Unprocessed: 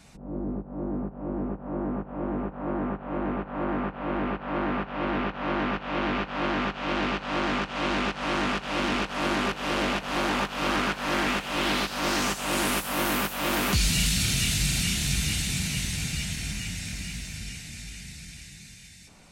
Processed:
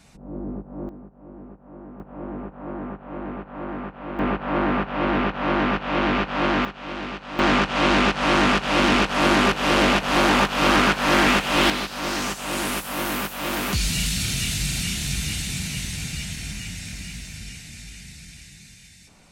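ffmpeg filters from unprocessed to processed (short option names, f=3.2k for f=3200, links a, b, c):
-af "asetnsamples=n=441:p=0,asendcmd='0.89 volume volume -11dB;2 volume volume -3dB;4.19 volume volume 6dB;6.65 volume volume -4dB;7.39 volume volume 8.5dB;11.7 volume volume 0dB',volume=0dB"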